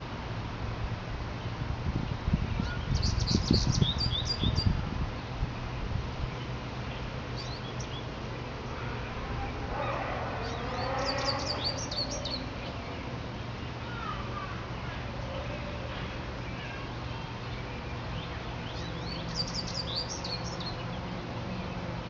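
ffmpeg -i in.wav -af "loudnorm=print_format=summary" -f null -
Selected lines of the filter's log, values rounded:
Input Integrated:    -34.0 LUFS
Input True Peak:     -10.1 dBTP
Input LRA:             7.3 LU
Input Threshold:     -44.0 LUFS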